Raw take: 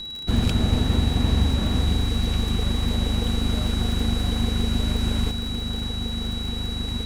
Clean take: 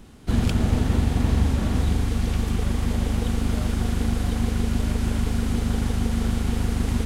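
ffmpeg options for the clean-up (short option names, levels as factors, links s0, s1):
-af "adeclick=t=4,bandreject=f=3900:w=30,asetnsamples=n=441:p=0,asendcmd='5.31 volume volume 5.5dB',volume=1"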